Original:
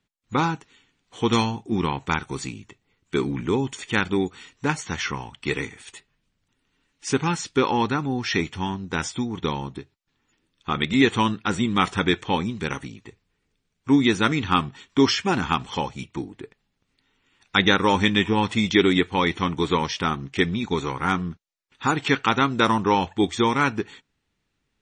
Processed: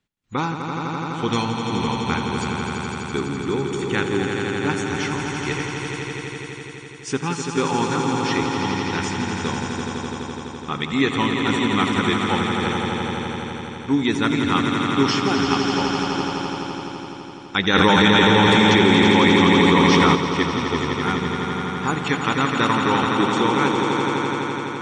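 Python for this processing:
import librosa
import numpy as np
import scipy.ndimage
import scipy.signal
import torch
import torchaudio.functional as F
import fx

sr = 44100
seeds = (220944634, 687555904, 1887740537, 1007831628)

y = fx.echo_swell(x, sr, ms=84, loudest=5, wet_db=-7.0)
y = fx.env_flatten(y, sr, amount_pct=100, at=(17.73, 20.14), fade=0.02)
y = y * librosa.db_to_amplitude(-2.0)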